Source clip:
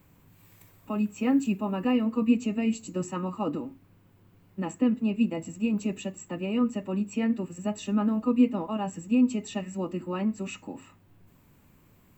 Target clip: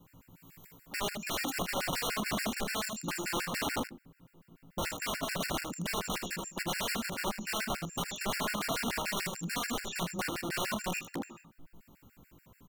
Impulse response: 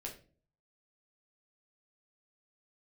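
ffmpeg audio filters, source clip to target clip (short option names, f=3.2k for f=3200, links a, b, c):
-filter_complex "[0:a]equalizer=f=100:t=o:w=0.23:g=-9,acrossover=split=370|2000[a][b][c];[a]alimiter=limit=-23dB:level=0:latency=1:release=84[d];[d][b][c]amix=inputs=3:normalize=0,asplit=2[e][f];[f]adelay=17,volume=-4dB[g];[e][g]amix=inputs=2:normalize=0,aeval=exprs='(mod(25.1*val(0)+1,2)-1)/25.1':c=same,aecho=1:1:28|75:0.188|0.501,asplit=2[h][i];[1:a]atrim=start_sample=2205,asetrate=38367,aresample=44100[j];[i][j]afir=irnorm=-1:irlink=0,volume=-13.5dB[k];[h][k]amix=inputs=2:normalize=0,asetrate=42336,aresample=44100,afftfilt=real='re*gt(sin(2*PI*6.9*pts/sr)*(1-2*mod(floor(b*sr/1024/1400),2)),0)':imag='im*gt(sin(2*PI*6.9*pts/sr)*(1-2*mod(floor(b*sr/1024/1400),2)),0)':win_size=1024:overlap=0.75"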